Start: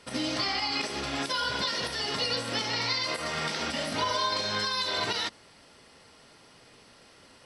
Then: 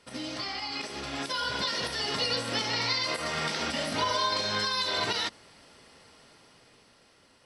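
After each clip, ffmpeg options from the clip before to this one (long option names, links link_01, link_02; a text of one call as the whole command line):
ffmpeg -i in.wav -af "dynaudnorm=framelen=290:gausssize=9:maxgain=6.5dB,volume=-6dB" out.wav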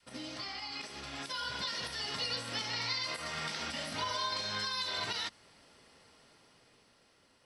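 ffmpeg -i in.wav -af "adynamicequalizer=threshold=0.00447:dfrequency=400:dqfactor=0.71:tfrequency=400:tqfactor=0.71:attack=5:release=100:ratio=0.375:range=3:mode=cutabove:tftype=bell,volume=-6dB" out.wav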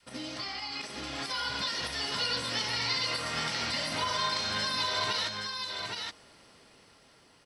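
ffmpeg -i in.wav -af "aecho=1:1:820:0.596,volume=4dB" out.wav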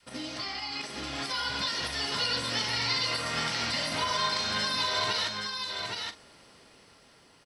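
ffmpeg -i in.wav -filter_complex "[0:a]asplit=2[link_01][link_02];[link_02]adelay=43,volume=-13dB[link_03];[link_01][link_03]amix=inputs=2:normalize=0,volume=1.5dB" out.wav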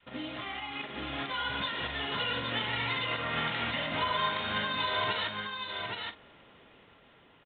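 ffmpeg -i in.wav -af "aresample=8000,aresample=44100" out.wav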